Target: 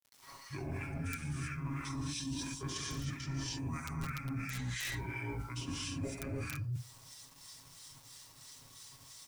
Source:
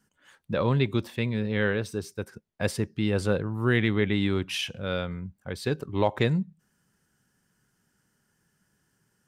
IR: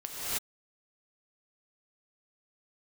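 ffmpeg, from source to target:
-filter_complex "[0:a]asplit=2[a][b];[b]adelay=65,lowpass=f=3k:p=1,volume=-17.5dB,asplit=2[c][d];[d]adelay=65,lowpass=f=3k:p=1,volume=0.17[e];[a][c][e]amix=inputs=3:normalize=0[f];[1:a]atrim=start_sample=2205[g];[f][g]afir=irnorm=-1:irlink=0,acrossover=split=1400[h][i];[h]asoftclip=type=tanh:threshold=-17dB[j];[i]crystalizer=i=3.5:c=0[k];[j][k]amix=inputs=2:normalize=0,asetrate=28595,aresample=44100,atempo=1.54221,aeval=exprs='(mod(3.76*val(0)+1,2)-1)/3.76':c=same,aecho=1:1:7.3:0.78,acrossover=split=140|5300[l][m][n];[l]acompressor=threshold=-26dB:ratio=4[o];[m]acompressor=threshold=-32dB:ratio=4[p];[n]acompressor=threshold=-37dB:ratio=4[q];[o][p][q]amix=inputs=3:normalize=0,acrossover=split=1200[r][s];[r]aeval=exprs='val(0)*(1-0.7/2+0.7/2*cos(2*PI*3*n/s))':c=same[t];[s]aeval=exprs='val(0)*(1-0.7/2-0.7/2*cos(2*PI*3*n/s))':c=same[u];[t][u]amix=inputs=2:normalize=0,acrusher=bits=9:mix=0:aa=0.000001,areverse,acompressor=threshold=-40dB:ratio=6,areverse,volume=3dB"

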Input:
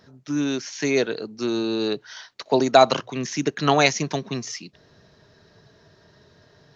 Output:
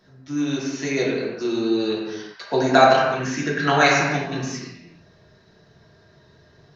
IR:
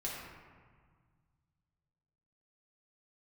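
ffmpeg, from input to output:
-filter_complex "[0:a]asettb=1/sr,asplit=3[a][b][c];[a]atrim=end=2.414[d];[b]atrim=start=2.41:end=4.41,asetpts=PTS-STARTPTS,afade=t=in:d=0.004:c=qsin,afade=t=out:st=1.996:d=0.004:c=qsin,equalizer=f=1.6k:w=3.9:g=13.5[e];[c]atrim=start=4.406[f];[d][e]acrossfade=d=0.004:c1=hsin:c2=qsin[g];[g][f]acrossfade=d=0.004:c1=qsin:c2=hsin[h];[1:a]atrim=start_sample=2205,afade=t=out:st=0.44:d=0.01,atrim=end_sample=19845[i];[h][i]afir=irnorm=-1:irlink=0,volume=-1.5dB"

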